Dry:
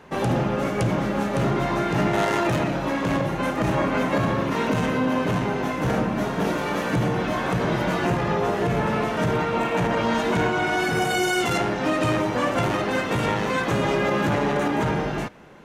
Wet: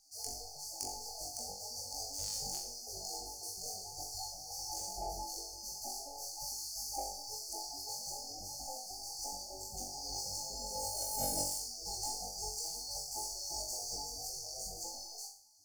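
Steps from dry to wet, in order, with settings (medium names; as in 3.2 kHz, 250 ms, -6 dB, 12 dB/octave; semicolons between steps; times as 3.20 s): median filter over 3 samples; spectral gate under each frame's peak -25 dB weak; peaking EQ 920 Hz +13 dB 0.27 oct; FFT band-reject 870–4300 Hz; saturation -28 dBFS, distortion -23 dB; flutter echo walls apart 3.6 m, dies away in 0.46 s; trim +2 dB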